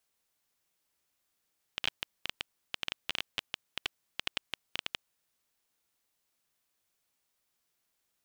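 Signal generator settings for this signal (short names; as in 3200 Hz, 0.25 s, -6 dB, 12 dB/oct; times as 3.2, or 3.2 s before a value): random clicks 11/s -14 dBFS 3.22 s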